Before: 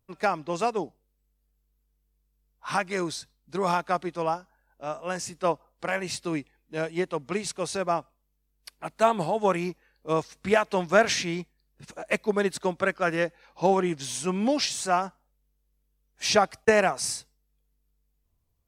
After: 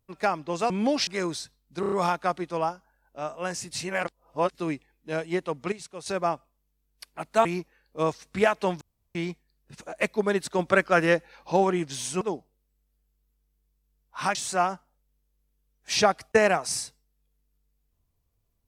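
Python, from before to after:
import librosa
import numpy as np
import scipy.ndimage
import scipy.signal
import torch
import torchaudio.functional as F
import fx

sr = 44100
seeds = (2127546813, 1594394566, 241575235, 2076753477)

y = fx.edit(x, sr, fx.swap(start_s=0.7, length_s=2.14, other_s=14.31, other_length_s=0.37),
    fx.stutter(start_s=3.57, slice_s=0.03, count=5),
    fx.reverse_span(start_s=5.36, length_s=0.84),
    fx.clip_gain(start_s=7.37, length_s=0.34, db=-9.5),
    fx.cut(start_s=9.1, length_s=0.45),
    fx.room_tone_fill(start_s=10.91, length_s=0.34),
    fx.clip_gain(start_s=12.69, length_s=0.93, db=4.5), tone=tone)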